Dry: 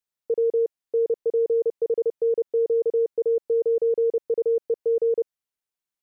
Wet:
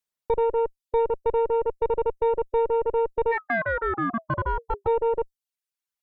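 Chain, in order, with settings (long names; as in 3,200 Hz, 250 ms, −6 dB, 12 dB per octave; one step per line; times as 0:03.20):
reverb reduction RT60 0.89 s
harmonic generator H 2 −6 dB, 5 −27 dB, 6 −36 dB, 8 −32 dB, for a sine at −17 dBFS
0:03.31–0:04.86: ring modulation 1,400 Hz → 380 Hz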